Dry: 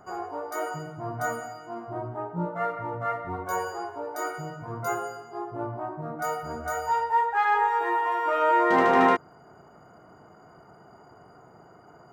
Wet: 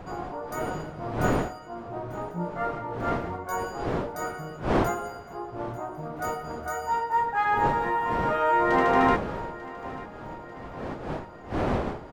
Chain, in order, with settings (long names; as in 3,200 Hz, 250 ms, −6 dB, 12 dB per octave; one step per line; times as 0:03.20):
wind on the microphone 600 Hz −32 dBFS
on a send: repeating echo 893 ms, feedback 56%, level −17.5 dB
on the sum: level −1.5 dB